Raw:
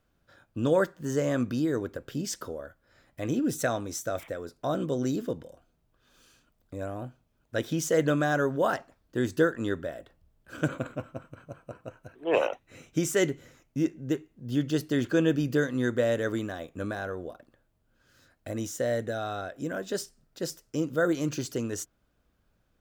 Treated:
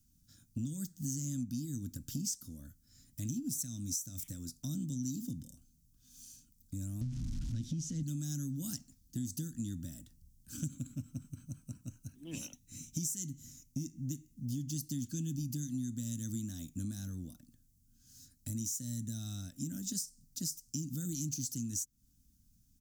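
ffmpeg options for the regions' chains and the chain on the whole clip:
ffmpeg -i in.wav -filter_complex "[0:a]asettb=1/sr,asplit=3[link_01][link_02][link_03];[link_01]atrim=end=7.014[link_04];[link_02]atrim=start=7.01:end=8.03,asetpts=PTS-STARTPTS,afade=type=in:duration=0.004:curve=qsin,afade=type=out:start_time=1.016:duration=0.004:curve=qsin,aeval=exprs='val(0)+0.5*0.0237*sgn(val(0))':channel_layout=same,lowpass=3100,lowshelf=frequency=170:gain=6.5[link_05];[link_03]atrim=start=8.026[link_06];[link_04][link_05]acrossfade=duration=0.004:curve1=hsin:curve2=qsin[link_07];[link_07][link_06]acrossfade=duration=0.004:curve1=qsin:curve2=hsin,acrossover=split=310|3000[link_08][link_09][link_10];[link_09]acompressor=threshold=-38dB:ratio=4[link_11];[link_08][link_11][link_10]amix=inputs=3:normalize=0,firequalizer=gain_entry='entry(260,0);entry(410,-30);entry(5900,9)':delay=0.05:min_phase=1,acompressor=threshold=-38dB:ratio=6,volume=3dB" out.wav

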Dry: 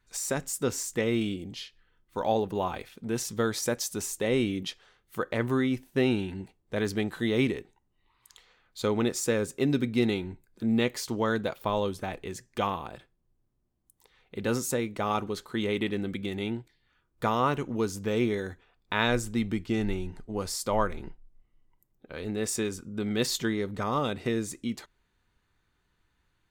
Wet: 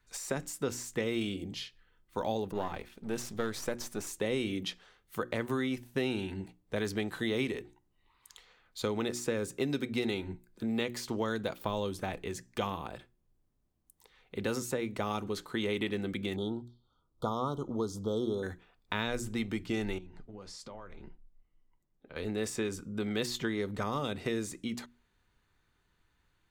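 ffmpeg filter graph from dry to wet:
ffmpeg -i in.wav -filter_complex "[0:a]asettb=1/sr,asplit=3[link_01][link_02][link_03];[link_01]atrim=end=2.524[link_04];[link_02]atrim=start=2.52:end=4.07,asetpts=PTS-STARTPTS,afade=type=in:duration=0.004:curve=qsin,afade=type=out:start_time=1.546:duration=0.004:curve=qsin,aeval=exprs='if(lt(val(0),0),0.447*val(0),val(0))':channel_layout=same,adynamicequalizer=threshold=0.00316:dfrequency=2600:dqfactor=0.7:tfrequency=2600:tqfactor=0.7:attack=5:release=100:ratio=0.375:range=2.5:mode=cutabove:tftype=highshelf[link_05];[link_03]atrim=start=4.066[link_06];[link_04][link_05]acrossfade=duration=0.004:curve1=hsin:curve2=qsin[link_07];[link_07][link_06]acrossfade=duration=0.004:curve1=qsin:curve2=hsin,asettb=1/sr,asplit=3[link_08][link_09][link_10];[link_08]atrim=end=16.364[link_11];[link_09]atrim=start=16.36:end=18.43,asetpts=PTS-STARTPTS,afade=type=in:duration=0.004:curve=qsin,afade=type=out:start_time=2.066:duration=0.004:curve=qsin,asuperstop=centerf=2100:order=20:qfactor=1.2,highshelf=frequency=5900:gain=-11.5[link_12];[link_10]atrim=start=18.426[link_13];[link_11][link_12]acrossfade=duration=0.004:curve1=hsin:curve2=qsin[link_14];[link_14][link_13]acrossfade=duration=0.004:curve1=qsin:curve2=hsin,asettb=1/sr,asplit=3[link_15][link_16][link_17];[link_15]atrim=end=19.984[link_18];[link_16]atrim=start=19.98:end=22.16,asetpts=PTS-STARTPTS,afade=type=in:duration=0.004:curve=qsin,afade=type=out:start_time=2.176:duration=0.004:curve=qsin,lowpass=5100,acompressor=threshold=-38dB:ratio=10:attack=3.2:release=140:knee=1:detection=peak,flanger=delay=3.7:depth=3.7:regen=-68:speed=1.7:shape=triangular[link_19];[link_17]atrim=start=22.156[link_20];[link_18][link_19]acrossfade=duration=0.004:curve1=hsin:curve2=qsin[link_21];[link_21][link_20]acrossfade=duration=0.004:curve1=qsin:curve2=hsin,bandreject=frequency=60:width_type=h:width=6,bandreject=frequency=120:width_type=h:width=6,bandreject=frequency=180:width_type=h:width=6,bandreject=frequency=240:width_type=h:width=6,bandreject=frequency=300:width_type=h:width=6,bandreject=frequency=360:width_type=h:width=6,acrossover=split=360|3600[link_22][link_23][link_24];[link_22]acompressor=threshold=-35dB:ratio=4[link_25];[link_23]acompressor=threshold=-33dB:ratio=4[link_26];[link_24]acompressor=threshold=-42dB:ratio=4[link_27];[link_25][link_26][link_27]amix=inputs=3:normalize=0" out.wav

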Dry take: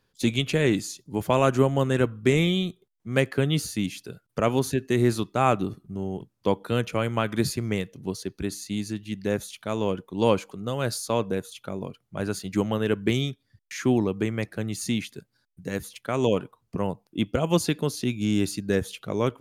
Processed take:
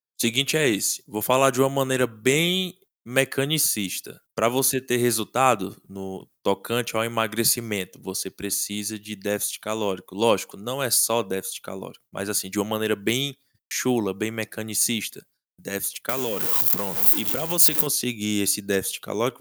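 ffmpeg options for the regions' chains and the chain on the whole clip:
ffmpeg -i in.wav -filter_complex "[0:a]asettb=1/sr,asplit=3[link_01][link_02][link_03];[link_01]atrim=end=16.094[link_04];[link_02]atrim=start=16.09:end=17.87,asetpts=PTS-STARTPTS,afade=type=in:duration=0.004:curve=qsin,afade=type=out:start_time=1.776:duration=0.004:curve=qsin,aeval=exprs='val(0)+0.5*0.0316*sgn(val(0))':channel_layout=same,highshelf=frequency=11000:gain=7,acompressor=threshold=-26dB:ratio=3:attack=3.2:release=140:knee=1:detection=peak[link_05];[link_03]atrim=start=17.866[link_06];[link_04][link_05]acrossfade=duration=0.004:curve1=hsin:curve2=qsin[link_07];[link_07][link_06]acrossfade=duration=0.004:curve1=qsin:curve2=hsin,agate=range=-33dB:threshold=-48dB:ratio=3:detection=peak,aemphasis=mode=production:type=bsi,volume=3dB" out.wav

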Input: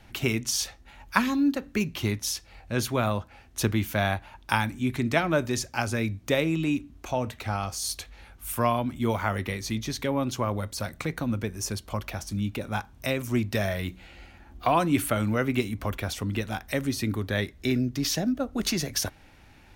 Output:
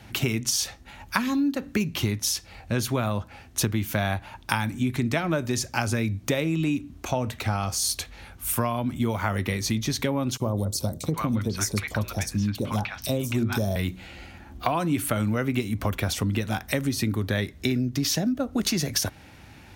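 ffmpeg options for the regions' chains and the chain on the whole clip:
ffmpeg -i in.wav -filter_complex "[0:a]asettb=1/sr,asplit=3[link_01][link_02][link_03];[link_01]atrim=end=10.374[link_04];[link_02]atrim=start=10.37:end=13.76,asetpts=PTS-STARTPTS,afade=type=in:duration=0.004:curve=qsin,afade=type=out:start_time=3.386:duration=0.004:curve=qsin,equalizer=frequency=3600:width=0.66:gain=2.5,bandreject=frequency=122.6:width_type=h:width=4,bandreject=frequency=245.2:width_type=h:width=4,bandreject=frequency=367.8:width_type=h:width=4,bandreject=frequency=490.4:width_type=h:width=4,bandreject=frequency=613:width_type=h:width=4,acrossover=split=930|4000[link_05][link_06][link_07];[link_05]adelay=30[link_08];[link_06]adelay=770[link_09];[link_08][link_09][link_07]amix=inputs=3:normalize=0,atrim=end_sample=149499[link_10];[link_03]atrim=start=13.756[link_11];[link_04][link_10]acrossfade=duration=0.004:curve1=hsin:curve2=qsin[link_12];[link_12][link_11]acrossfade=duration=0.004:curve1=qsin:curve2=hsin,highpass=75,bass=frequency=250:gain=4,treble=frequency=4000:gain=2,acompressor=threshold=-27dB:ratio=6,volume=5.5dB" out.wav

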